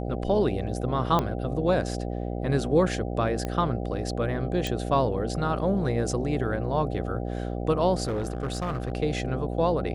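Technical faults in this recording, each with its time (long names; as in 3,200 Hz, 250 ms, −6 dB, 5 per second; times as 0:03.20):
mains buzz 60 Hz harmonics 13 −31 dBFS
0:01.19: click −12 dBFS
0:03.45: click −17 dBFS
0:04.67: click
0:08.03–0:08.92: clipping −24.5 dBFS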